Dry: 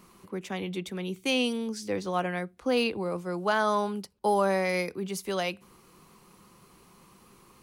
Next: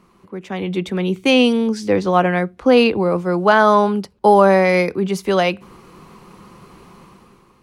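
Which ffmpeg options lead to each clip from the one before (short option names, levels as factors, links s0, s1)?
-af "lowpass=f=2300:p=1,dynaudnorm=f=140:g=9:m=3.76,volume=1.41"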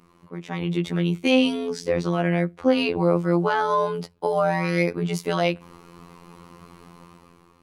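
-af "alimiter=limit=0.355:level=0:latency=1:release=85,afftfilt=real='hypot(re,im)*cos(PI*b)':imag='0':win_size=2048:overlap=0.75"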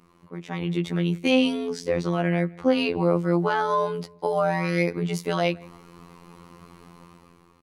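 -filter_complex "[0:a]asplit=2[s0][s1];[s1]adelay=163,lowpass=f=2900:p=1,volume=0.0631,asplit=2[s2][s3];[s3]adelay=163,lowpass=f=2900:p=1,volume=0.39[s4];[s0][s2][s4]amix=inputs=3:normalize=0,volume=0.841"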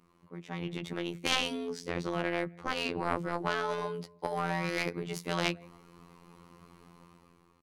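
-af "aeval=exprs='0.531*(cos(1*acos(clip(val(0)/0.531,-1,1)))-cos(1*PI/2))+0.106*(cos(3*acos(clip(val(0)/0.531,-1,1)))-cos(3*PI/2))':c=same,afftfilt=real='re*lt(hypot(re,im),0.251)':imag='im*lt(hypot(re,im),0.251)':win_size=1024:overlap=0.75"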